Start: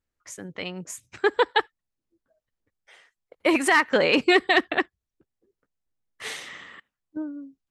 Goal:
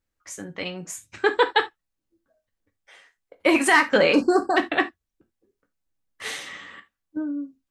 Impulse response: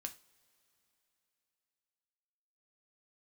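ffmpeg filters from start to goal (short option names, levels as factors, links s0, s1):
-filter_complex "[0:a]asplit=3[s0][s1][s2];[s0]afade=t=out:st=4.12:d=0.02[s3];[s1]asuperstop=centerf=2700:order=20:qfactor=0.94,afade=t=in:st=4.12:d=0.02,afade=t=out:st=4.56:d=0.02[s4];[s2]afade=t=in:st=4.56:d=0.02[s5];[s3][s4][s5]amix=inputs=3:normalize=0[s6];[1:a]atrim=start_sample=2205,atrim=end_sample=3969[s7];[s6][s7]afir=irnorm=-1:irlink=0,volume=1.88"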